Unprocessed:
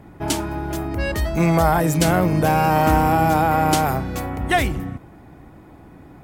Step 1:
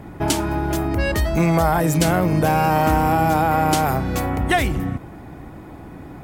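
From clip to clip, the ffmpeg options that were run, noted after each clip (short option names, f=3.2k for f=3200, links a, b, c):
-af "acompressor=threshold=-26dB:ratio=2,volume=6.5dB"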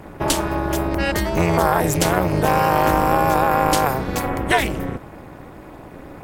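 -af "lowshelf=f=220:g=-6.5,tremolo=f=260:d=1,volume=6dB"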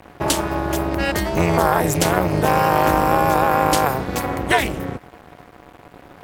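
-af "aeval=exprs='val(0)+0.0112*sin(2*PI*720*n/s)':c=same,highpass=48,aeval=exprs='sgn(val(0))*max(abs(val(0))-0.0141,0)':c=same,volume=1dB"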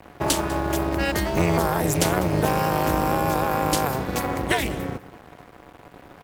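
-filter_complex "[0:a]acrossover=split=410|3000[a][b][c];[b]acompressor=threshold=-19dB:ratio=6[d];[a][d][c]amix=inputs=3:normalize=0,asplit=2[e][f];[f]acrusher=bits=2:mode=log:mix=0:aa=0.000001,volume=-11dB[g];[e][g]amix=inputs=2:normalize=0,aecho=1:1:198:0.119,volume=-4.5dB"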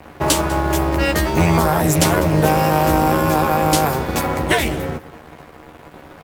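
-filter_complex "[0:a]asplit=2[a][b];[b]adelay=13,volume=-4.5dB[c];[a][c]amix=inputs=2:normalize=0,volume=4.5dB"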